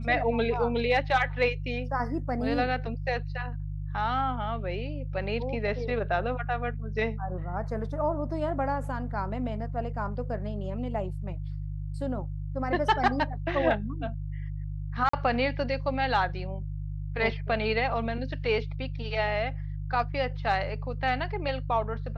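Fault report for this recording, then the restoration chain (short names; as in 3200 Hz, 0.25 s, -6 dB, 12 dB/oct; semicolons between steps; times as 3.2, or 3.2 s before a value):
hum 50 Hz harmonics 3 -34 dBFS
15.09–15.13 gap 44 ms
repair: de-hum 50 Hz, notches 3; interpolate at 15.09, 44 ms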